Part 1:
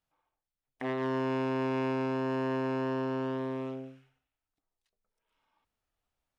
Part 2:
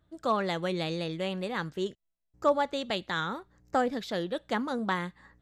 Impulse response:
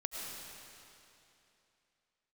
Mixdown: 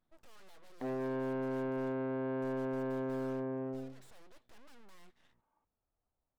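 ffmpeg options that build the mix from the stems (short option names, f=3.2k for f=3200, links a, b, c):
-filter_complex "[0:a]lowpass=1k,asoftclip=type=tanh:threshold=-31.5dB,volume=-0.5dB[a];[1:a]alimiter=limit=-20.5dB:level=0:latency=1:release=130,aeval=exprs='(tanh(112*val(0)+0.25)-tanh(0.25))/112':c=same,aeval=exprs='abs(val(0))':c=same,volume=-11dB[b];[a][b]amix=inputs=2:normalize=0"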